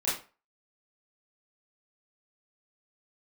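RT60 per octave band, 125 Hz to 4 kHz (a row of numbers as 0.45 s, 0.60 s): 0.30 s, 0.30 s, 0.35 s, 0.35 s, 0.30 s, 0.25 s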